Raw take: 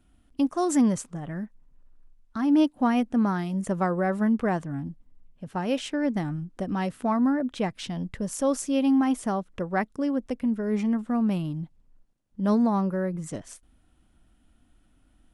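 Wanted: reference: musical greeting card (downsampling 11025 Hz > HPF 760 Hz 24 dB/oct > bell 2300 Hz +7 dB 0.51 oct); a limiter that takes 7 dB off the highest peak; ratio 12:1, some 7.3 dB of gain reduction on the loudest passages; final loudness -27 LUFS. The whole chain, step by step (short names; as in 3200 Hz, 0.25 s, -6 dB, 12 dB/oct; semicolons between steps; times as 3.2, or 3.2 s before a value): compressor 12:1, threshold -25 dBFS; limiter -25 dBFS; downsampling 11025 Hz; HPF 760 Hz 24 dB/oct; bell 2300 Hz +7 dB 0.51 oct; gain +15.5 dB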